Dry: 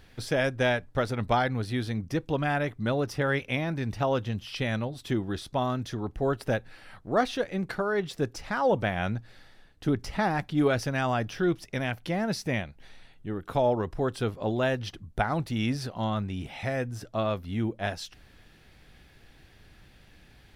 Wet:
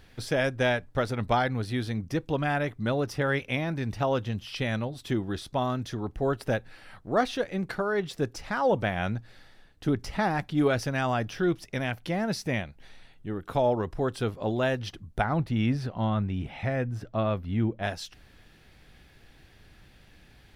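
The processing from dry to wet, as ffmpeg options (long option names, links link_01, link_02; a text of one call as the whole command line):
ffmpeg -i in.wav -filter_complex "[0:a]asettb=1/sr,asplit=3[link_01][link_02][link_03];[link_01]atrim=end=15.244[link_04];[link_02]atrim=start=15.24:end=17.83,asetpts=PTS-STARTPTS,afade=type=in:duration=0.004:curve=qsin,afade=type=out:start_time=2.586:duration=0.004:curve=qsin,bass=frequency=250:gain=4,treble=frequency=4000:gain=-11[link_05];[link_03]atrim=start=17.826[link_06];[link_04][link_05]acrossfade=duration=0.004:curve1=hsin:curve2=qsin[link_07];[link_07][link_06]acrossfade=duration=0.004:curve1=qsin:curve2=hsin" out.wav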